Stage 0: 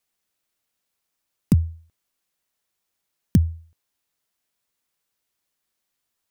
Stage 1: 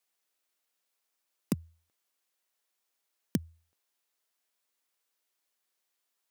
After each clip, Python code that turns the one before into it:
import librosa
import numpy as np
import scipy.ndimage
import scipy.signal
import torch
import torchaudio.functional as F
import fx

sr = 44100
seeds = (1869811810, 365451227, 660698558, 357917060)

y = scipy.signal.sosfilt(scipy.signal.butter(2, 330.0, 'highpass', fs=sr, output='sos'), x)
y = F.gain(torch.from_numpy(y), -2.5).numpy()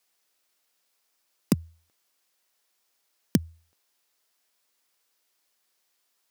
y = fx.peak_eq(x, sr, hz=5000.0, db=3.0, octaves=0.43)
y = F.gain(torch.from_numpy(y), 7.5).numpy()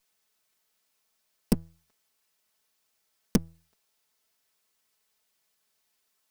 y = fx.lower_of_two(x, sr, delay_ms=4.6)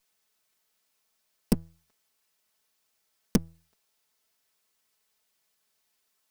y = x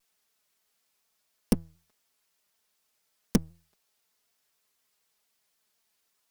y = fx.vibrato_shape(x, sr, shape='saw_down', rate_hz=4.0, depth_cents=100.0)